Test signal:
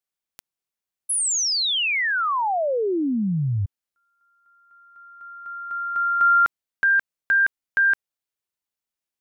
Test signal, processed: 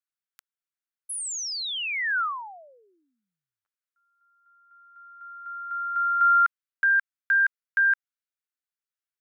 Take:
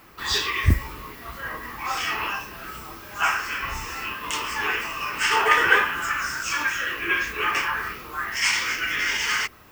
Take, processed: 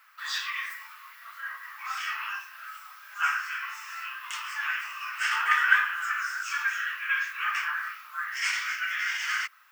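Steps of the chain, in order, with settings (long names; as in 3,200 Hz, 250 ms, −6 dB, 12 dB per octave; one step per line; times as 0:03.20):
four-pole ladder high-pass 1,200 Hz, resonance 50%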